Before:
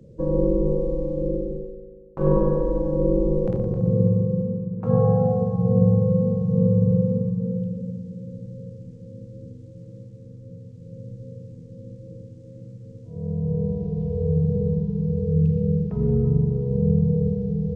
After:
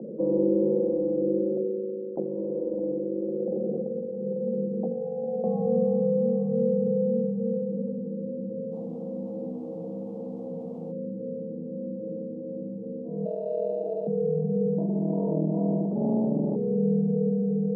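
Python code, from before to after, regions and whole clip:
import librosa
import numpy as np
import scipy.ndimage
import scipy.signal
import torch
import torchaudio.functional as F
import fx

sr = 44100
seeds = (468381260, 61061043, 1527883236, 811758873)

y = fx.chain(x, sr, fx.over_compress(threshold_db=-28.0, ratio=-1.0),
    fx.ladder_lowpass(hz=730.0, resonance_pct=25), at=(1.57, 5.44))
y = fx.quant_dither(y, sr, seeds[0], bits=8, dither='triangular', at=(8.71, 10.91), fade=0.02)
y = fx.dmg_tone(y, sr, hz=470.0, level_db=-54.0, at=(8.71, 10.91), fade=0.02)
y = fx.chain(y, sr, fx.highpass(hz=350.0, slope=24),
    fx.sample_hold(seeds[1], rate_hz=1100.0, jitter_pct=0), at=(13.25, 14.07))
y = fx.chain(y, sr, fx.highpass(hz=45.0, slope=12),
    fx.running_max(window=33), at=(14.78, 16.56))
y = scipy.signal.sosfilt(scipy.signal.ellip(3, 1.0, 40, [200.0, 770.0], 'bandpass', fs=sr, output='sos'), y)
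y = fx.hum_notches(y, sr, base_hz=60, count=9)
y = fx.env_flatten(y, sr, amount_pct=50)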